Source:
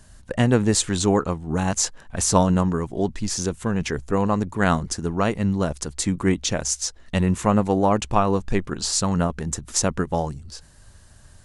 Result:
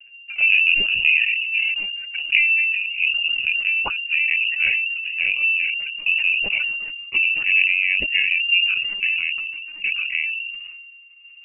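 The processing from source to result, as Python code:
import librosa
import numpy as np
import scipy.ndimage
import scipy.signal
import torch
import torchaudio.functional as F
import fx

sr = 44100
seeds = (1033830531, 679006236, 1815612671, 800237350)

y = fx.pitch_glide(x, sr, semitones=-5.5, runs='ending unshifted')
y = fx.peak_eq(y, sr, hz=1600.0, db=-14.0, octaves=1.7)
y = fx.transient(y, sr, attack_db=2, sustain_db=-3)
y = fx.env_flanger(y, sr, rest_ms=5.7, full_db=-19.5)
y = fx.freq_invert(y, sr, carrier_hz=2800)
y = fx.lpc_vocoder(y, sr, seeds[0], excitation='pitch_kept', order=16)
y = fx.sustainer(y, sr, db_per_s=30.0)
y = y * 10.0 ** (1.5 / 20.0)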